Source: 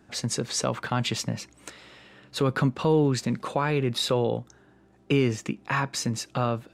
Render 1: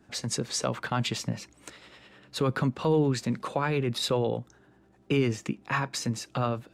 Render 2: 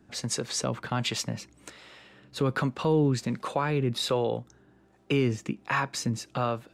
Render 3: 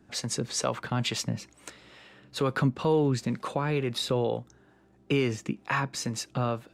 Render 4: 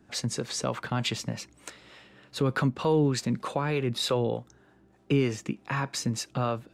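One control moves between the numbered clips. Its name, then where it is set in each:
harmonic tremolo, rate: 10 Hz, 1.3 Hz, 2.2 Hz, 3.3 Hz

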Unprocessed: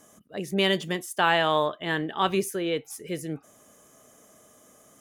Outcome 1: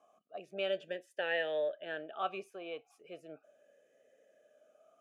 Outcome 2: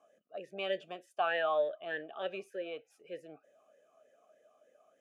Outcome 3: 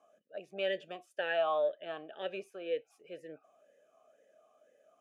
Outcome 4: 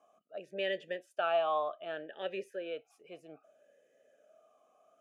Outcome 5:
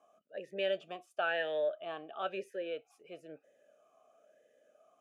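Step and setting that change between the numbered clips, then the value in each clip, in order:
talking filter, rate: 0.37 Hz, 3.3 Hz, 2 Hz, 0.64 Hz, 1 Hz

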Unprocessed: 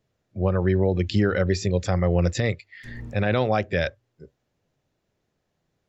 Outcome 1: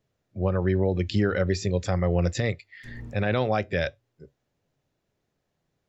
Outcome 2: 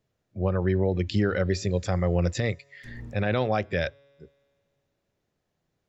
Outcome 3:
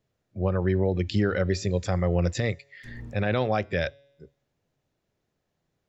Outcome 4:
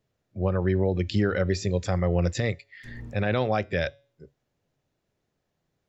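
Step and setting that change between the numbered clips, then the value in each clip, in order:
feedback comb, decay: 0.18 s, 2.2 s, 0.93 s, 0.44 s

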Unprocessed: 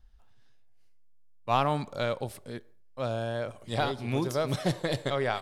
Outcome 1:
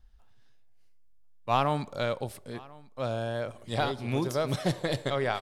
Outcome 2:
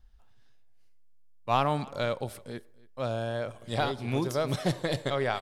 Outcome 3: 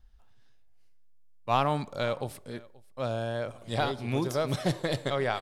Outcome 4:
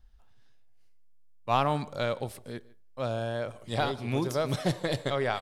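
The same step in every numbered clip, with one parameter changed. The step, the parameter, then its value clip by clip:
delay, time: 1042 ms, 281 ms, 531 ms, 151 ms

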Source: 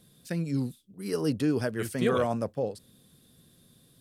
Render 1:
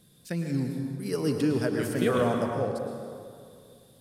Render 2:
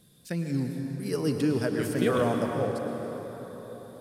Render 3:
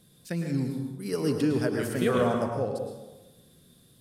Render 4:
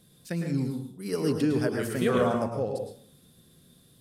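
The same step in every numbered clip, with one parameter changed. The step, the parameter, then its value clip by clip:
plate-style reverb, RT60: 2.3 s, 4.8 s, 1.1 s, 0.52 s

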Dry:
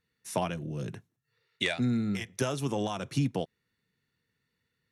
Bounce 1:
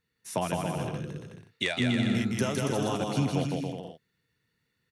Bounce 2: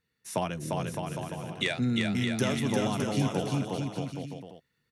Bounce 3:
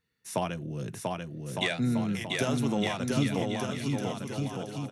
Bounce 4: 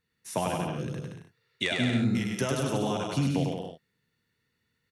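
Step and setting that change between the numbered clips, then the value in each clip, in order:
bouncing-ball echo, first gap: 160 ms, 350 ms, 690 ms, 100 ms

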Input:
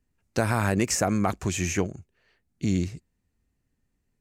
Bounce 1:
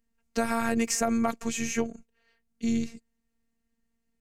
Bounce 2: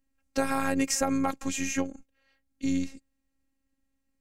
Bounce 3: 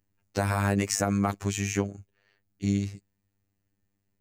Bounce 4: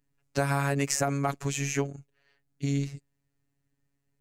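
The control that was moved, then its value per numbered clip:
robot voice, frequency: 230 Hz, 270 Hz, 100 Hz, 140 Hz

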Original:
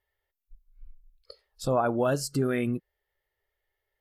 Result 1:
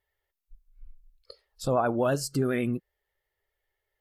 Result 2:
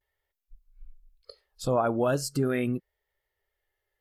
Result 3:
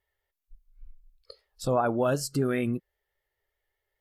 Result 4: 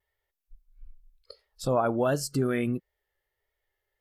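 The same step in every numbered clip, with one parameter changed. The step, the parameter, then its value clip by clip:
vibrato, rate: 12 Hz, 0.44 Hz, 5.1 Hz, 1.5 Hz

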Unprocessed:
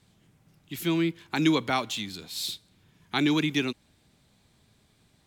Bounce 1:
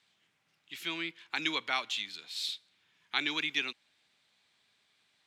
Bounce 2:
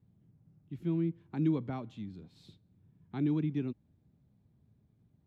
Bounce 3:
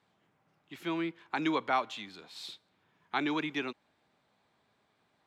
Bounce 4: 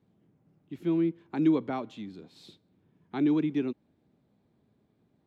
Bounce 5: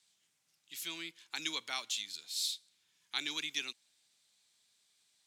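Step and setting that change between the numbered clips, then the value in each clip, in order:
band-pass filter, frequency: 2.6 kHz, 120 Hz, 980 Hz, 310 Hz, 6.6 kHz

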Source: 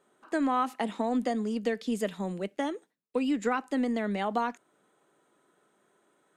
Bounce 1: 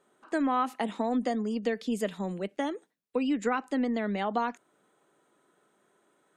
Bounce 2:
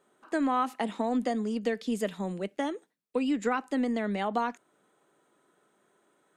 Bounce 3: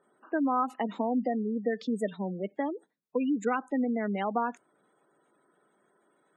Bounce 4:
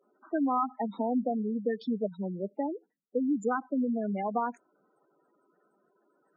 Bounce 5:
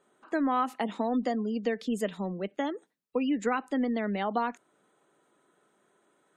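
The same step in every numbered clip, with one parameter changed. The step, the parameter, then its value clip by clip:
spectral gate, under each frame's peak: -45 dB, -60 dB, -20 dB, -10 dB, -35 dB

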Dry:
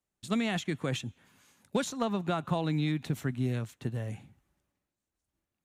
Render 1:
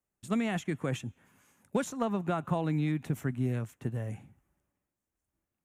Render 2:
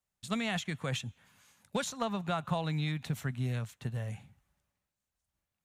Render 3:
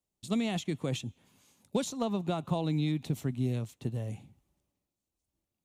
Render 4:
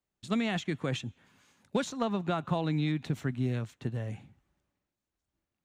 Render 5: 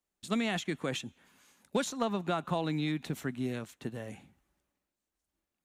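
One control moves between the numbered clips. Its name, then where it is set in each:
peaking EQ, frequency: 4.1 kHz, 320 Hz, 1.6 kHz, 12 kHz, 110 Hz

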